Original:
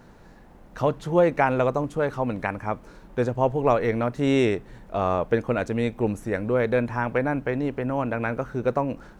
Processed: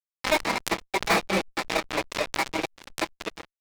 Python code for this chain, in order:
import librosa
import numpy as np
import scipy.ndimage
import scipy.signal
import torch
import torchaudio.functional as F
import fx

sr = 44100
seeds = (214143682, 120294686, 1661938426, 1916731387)

p1 = fx.speed_glide(x, sr, from_pct=186, to_pct=74)
p2 = fx.cheby_harmonics(p1, sr, harmonics=(2, 4, 7), levels_db=(-21, -31, -16), full_scale_db=-5.5)
p3 = fx.stretch_vocoder_free(p2, sr, factor=0.51)
p4 = fx.level_steps(p3, sr, step_db=13)
p5 = p4 + 0.47 * np.pad(p4, (int(6.1 * sr / 1000.0), 0))[:len(p4)]
p6 = p5 + fx.echo_single(p5, sr, ms=226, db=-20.0, dry=0)
p7 = fx.sample_hold(p6, sr, seeds[0], rate_hz=3100.0, jitter_pct=0)
p8 = fx.cabinet(p7, sr, low_hz=210.0, low_slope=24, high_hz=4700.0, hz=(330.0, 1500.0, 2300.0), db=(4, -8, 8))
p9 = fx.room_shoebox(p8, sr, seeds[1], volume_m3=390.0, walls='furnished', distance_m=1.2)
p10 = fx.granulator(p9, sr, seeds[2], grain_ms=211.0, per_s=4.8, spray_ms=11.0, spread_st=0)
p11 = fx.fuzz(p10, sr, gain_db=38.0, gate_db=-44.0)
p12 = fx.pre_swell(p11, sr, db_per_s=140.0)
y = p12 * 10.0 ** (-4.0 / 20.0)